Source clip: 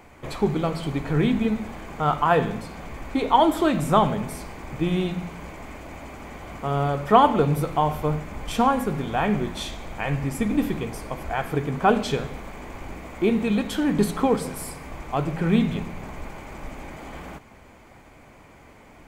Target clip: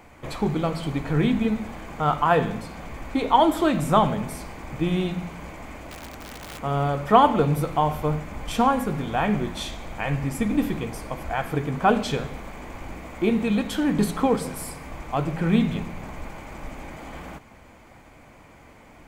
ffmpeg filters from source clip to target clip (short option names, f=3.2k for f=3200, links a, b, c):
-filter_complex "[0:a]bandreject=f=400:w=12,asettb=1/sr,asplit=3[a][b][c];[a]atrim=end=5.894[d];[b]atrim=start=5.89:end=6.59,asetpts=PTS-STARTPTS,afade=t=in:d=0.004:c=qsin,afade=t=out:st=0.696:d=0.004:c=qsin,aeval=exprs='(mod(37.6*val(0)+1,2)-1)/37.6':c=same[e];[c]atrim=start=6.586[f];[d][e]acrossfade=d=0.004:c1=hsin:c2=qsin[g];[g][f]acrossfade=d=0.004:c1=qsin:c2=hsin"